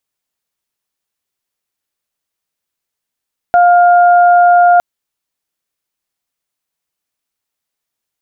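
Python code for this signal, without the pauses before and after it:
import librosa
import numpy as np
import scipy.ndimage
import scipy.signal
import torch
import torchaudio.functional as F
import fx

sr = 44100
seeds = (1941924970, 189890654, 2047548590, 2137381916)

y = fx.additive_steady(sr, length_s=1.26, hz=705.0, level_db=-4.5, upper_db=(-11,))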